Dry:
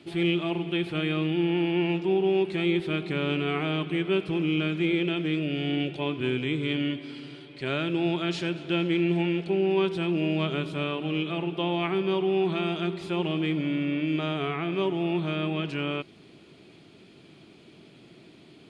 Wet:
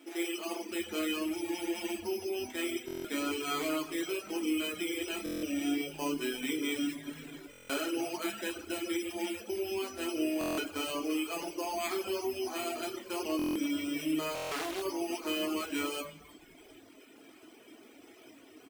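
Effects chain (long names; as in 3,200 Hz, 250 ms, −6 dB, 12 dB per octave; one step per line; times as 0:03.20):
speech leveller 2 s
linear-phase brick-wall high-pass 220 Hz
downward compressor, threshold −27 dBFS, peak gain reduction 6 dB
echo with shifted repeats 321 ms, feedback 32%, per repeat −130 Hz, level −17 dB
bad sample-rate conversion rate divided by 8×, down filtered, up hold
convolution reverb RT60 1.0 s, pre-delay 5 ms, DRR −1 dB
reverb reduction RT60 0.96 s
low-shelf EQ 350 Hz −7.5 dB
buffer that repeats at 0:02.86/0:05.24/0:07.51/0:10.39/0:13.37/0:14.33, samples 1,024, times 7
0:14.35–0:14.82: highs frequency-modulated by the lows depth 0.4 ms
level −2 dB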